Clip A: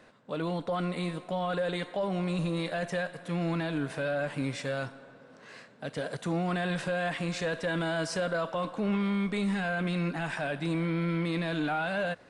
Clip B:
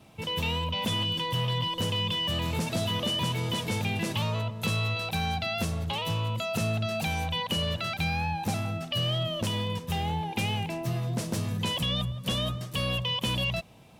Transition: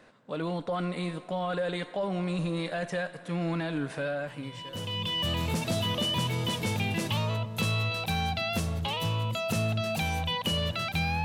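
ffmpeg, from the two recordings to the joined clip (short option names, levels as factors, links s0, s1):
-filter_complex "[0:a]apad=whole_dur=11.24,atrim=end=11.24,atrim=end=5.21,asetpts=PTS-STARTPTS[s0];[1:a]atrim=start=1.08:end=8.29,asetpts=PTS-STARTPTS[s1];[s0][s1]acrossfade=d=1.18:c1=qua:c2=qua"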